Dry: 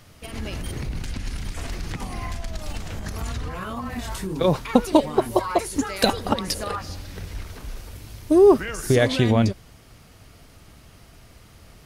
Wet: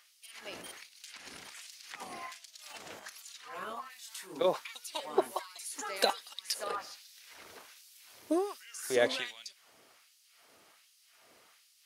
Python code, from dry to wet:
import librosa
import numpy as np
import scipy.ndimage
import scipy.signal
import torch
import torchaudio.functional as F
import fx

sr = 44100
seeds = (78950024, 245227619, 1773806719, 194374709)

y = fx.filter_lfo_highpass(x, sr, shape='sine', hz=1.3, low_hz=370.0, high_hz=4500.0, q=0.91)
y = y * librosa.db_to_amplitude(-7.5)